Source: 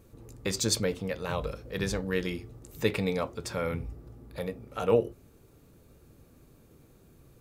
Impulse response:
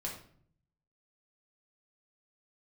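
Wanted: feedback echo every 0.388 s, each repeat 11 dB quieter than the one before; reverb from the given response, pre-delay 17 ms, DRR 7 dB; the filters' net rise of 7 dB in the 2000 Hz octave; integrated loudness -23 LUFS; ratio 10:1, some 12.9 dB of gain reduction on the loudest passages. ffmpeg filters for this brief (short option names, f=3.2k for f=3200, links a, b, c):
-filter_complex "[0:a]equalizer=f=2k:t=o:g=8.5,acompressor=threshold=-31dB:ratio=10,aecho=1:1:388|776|1164:0.282|0.0789|0.0221,asplit=2[a][b];[1:a]atrim=start_sample=2205,adelay=17[c];[b][c]afir=irnorm=-1:irlink=0,volume=-8dB[d];[a][d]amix=inputs=2:normalize=0,volume=13dB"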